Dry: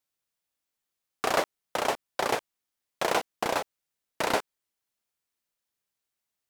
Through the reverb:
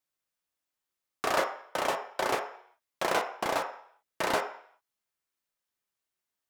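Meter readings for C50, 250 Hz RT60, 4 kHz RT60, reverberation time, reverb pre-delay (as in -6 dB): 8.5 dB, 0.55 s, 0.65 s, 0.60 s, 3 ms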